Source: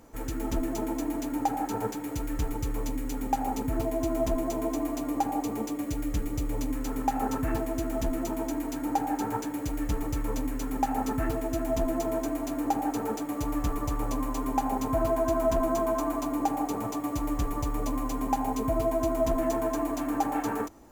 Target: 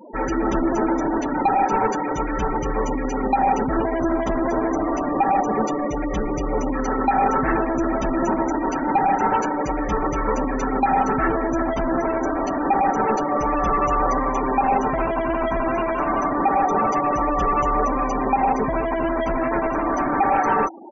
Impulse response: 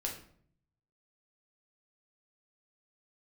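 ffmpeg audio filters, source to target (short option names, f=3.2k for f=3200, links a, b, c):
-filter_complex "[0:a]asplit=2[a][b];[b]alimiter=limit=-24dB:level=0:latency=1:release=75,volume=-1dB[c];[a][c]amix=inputs=2:normalize=0,asplit=2[d][e];[e]highpass=f=720:p=1,volume=23dB,asoftclip=type=tanh:threshold=-13dB[f];[d][f]amix=inputs=2:normalize=0,lowpass=f=1.9k:p=1,volume=-6dB,aresample=16000,aresample=44100,afftfilt=real='re*gte(hypot(re,im),0.0501)':imag='im*gte(hypot(re,im),0.0501)':win_size=1024:overlap=0.75,aecho=1:1:5.3:0.62,volume=1.5dB"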